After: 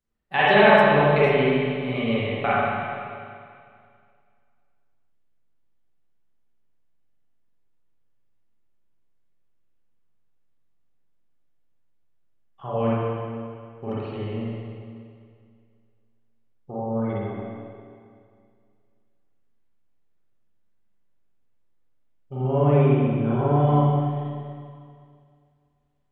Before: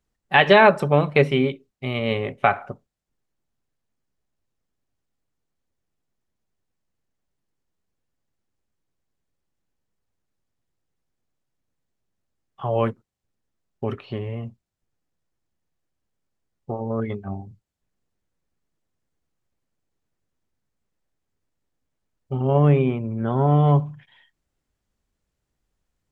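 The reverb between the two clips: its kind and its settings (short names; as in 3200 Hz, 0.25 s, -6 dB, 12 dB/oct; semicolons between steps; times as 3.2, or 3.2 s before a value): spring tank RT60 2.2 s, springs 39/44/48 ms, chirp 35 ms, DRR -9 dB; gain -9.5 dB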